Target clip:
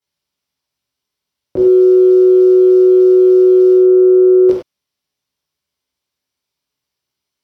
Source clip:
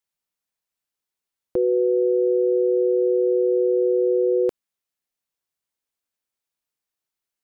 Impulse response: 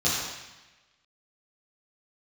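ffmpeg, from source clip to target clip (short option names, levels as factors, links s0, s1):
-filter_complex "[0:a]acontrast=58,asettb=1/sr,asplit=3[s0][s1][s2];[s0]atrim=end=1.564[s3];[s1]atrim=start=1.56:end=3.76,asetpts=PTS-STARTPTS,afade=t=in:d=0.004:c=qsin,afade=t=out:st=2.196:d=0.004:c=qsin,aeval=exprs='val(0)*gte(abs(val(0)),0.0133)':c=same[s4];[s2]atrim=start=3.756[s5];[s3][s4]acrossfade=d=0.004:c1=hsin:c2=qsin[s6];[s6][s5]acrossfade=d=0.004:c1=qsin:c2=hsin[s7];[1:a]atrim=start_sample=2205,afade=t=out:st=0.15:d=0.01,atrim=end_sample=7056,asetrate=36162,aresample=44100[s8];[s7][s8]afir=irnorm=-1:irlink=0,volume=0.299"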